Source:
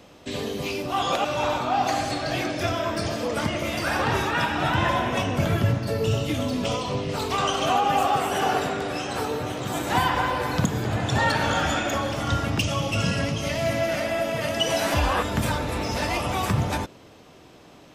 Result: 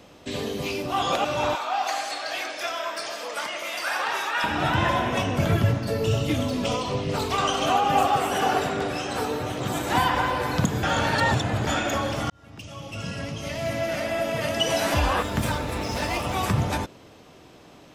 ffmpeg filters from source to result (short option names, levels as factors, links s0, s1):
-filter_complex "[0:a]asettb=1/sr,asplit=3[s0][s1][s2];[s0]atrim=end=1.554[s3];[s1]atrim=start=1.55:end=4.44,asetpts=PTS-STARTPTS,afade=t=in:d=0.004:c=qsin,afade=t=out:st=2.886:d=0.004:c=qsin,highpass=770[s4];[s2]atrim=start=4.436[s5];[s3][s4]acrossfade=d=0.004:c1=hsin:c2=qsin[s6];[s6][s5]acrossfade=d=0.004:c1=qsin:c2=hsin,asettb=1/sr,asplit=3[s7][s8][s9];[s7]atrim=end=5.494[s10];[s8]atrim=start=5.49:end=10.21,asetpts=PTS-STARTPTS,afade=t=in:d=0.004:c=qsin,afade=t=out:st=4.716:d=0.004:c=qsin,aphaser=in_gain=1:out_gain=1:delay=4.2:decay=0.21:speed=1.2:type=sinusoidal[s11];[s9]atrim=start=10.206[s12];[s10][s11]acrossfade=d=0.004:c1=hsin:c2=qsin[s13];[s13][s12]acrossfade=d=0.004:c1=qsin:c2=hsin,asettb=1/sr,asplit=3[s14][s15][s16];[s14]atrim=end=15.174[s17];[s15]atrim=start=15.17:end=16.36,asetpts=PTS-STARTPTS,afade=t=in:d=0.004:c=qsin,afade=t=out:st=1.186:d=0.004:c=qsin,aeval=exprs='sgn(val(0))*max(abs(val(0))-0.00841,0)':c=same[s18];[s16]atrim=start=16.356[s19];[s17][s18]acrossfade=d=0.004:c1=hsin:c2=qsin[s20];[s20][s19]acrossfade=d=0.004:c1=qsin:c2=hsin,asplit=4[s21][s22][s23][s24];[s21]atrim=end=10.832[s25];[s22]atrim=start=10.828:end=11.672,asetpts=PTS-STARTPTS,areverse[s26];[s23]atrim=start=11.668:end=12.3,asetpts=PTS-STARTPTS,afade=t=out:st=0.628:d=0.004:c=hsin[s27];[s24]atrim=start=12.3,asetpts=PTS-STARTPTS,afade=t=in:d=2.07[s28];[s25][s26]acrossfade=d=0.004:c1=hsin:c2=hsin[s29];[s27][s28]concat=n=2:v=0:a=1[s30];[s29][s30]acrossfade=d=0.004:c1=hsin:c2=hsin"